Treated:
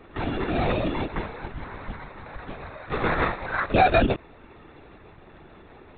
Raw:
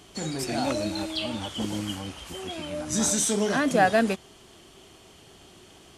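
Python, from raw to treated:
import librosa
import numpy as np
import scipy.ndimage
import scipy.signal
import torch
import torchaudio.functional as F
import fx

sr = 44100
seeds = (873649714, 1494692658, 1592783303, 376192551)

y = fx.highpass(x, sr, hz=910.0, slope=24, at=(1.07, 3.74))
y = fx.sample_hold(y, sr, seeds[0], rate_hz=3100.0, jitter_pct=0)
y = 10.0 ** (-11.0 / 20.0) * np.tanh(y / 10.0 ** (-11.0 / 20.0))
y = fx.lpc_vocoder(y, sr, seeds[1], excitation='whisper', order=16)
y = y * librosa.db_to_amplitude(3.5)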